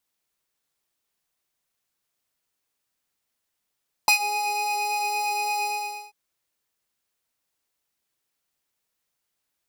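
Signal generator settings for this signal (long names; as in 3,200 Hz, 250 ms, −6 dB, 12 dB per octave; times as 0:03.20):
subtractive patch with filter wobble G#5, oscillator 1 square, oscillator 2 saw, interval +19 semitones, oscillator 2 level −0.5 dB, noise −22 dB, filter highpass, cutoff 150 Hz, Q 0.99, filter envelope 3 octaves, attack 1.9 ms, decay 0.10 s, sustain −15 dB, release 0.48 s, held 1.56 s, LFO 3.6 Hz, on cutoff 1 octave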